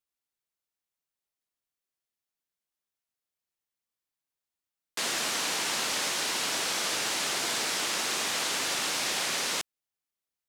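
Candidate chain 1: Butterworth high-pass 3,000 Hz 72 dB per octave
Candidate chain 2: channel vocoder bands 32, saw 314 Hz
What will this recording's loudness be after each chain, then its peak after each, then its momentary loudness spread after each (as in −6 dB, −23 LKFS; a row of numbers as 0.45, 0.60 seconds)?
−29.5, −30.5 LKFS; −19.5, −19.5 dBFS; 3, 3 LU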